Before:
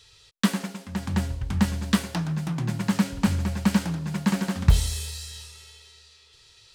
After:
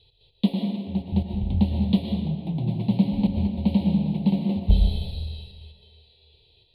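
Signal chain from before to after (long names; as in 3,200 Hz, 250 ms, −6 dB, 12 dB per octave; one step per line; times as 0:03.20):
drawn EQ curve 790 Hz 0 dB, 1,300 Hz −16 dB, 4,100 Hz +9 dB, 6,400 Hz −26 dB, 10,000 Hz +7 dB
gate pattern "x.xxxxxxxx." 147 BPM −12 dB
Butterworth band-reject 1,500 Hz, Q 0.93
high-frequency loss of the air 450 metres
convolution reverb RT60 1.5 s, pre-delay 80 ms, DRR 2.5 dB
level +1.5 dB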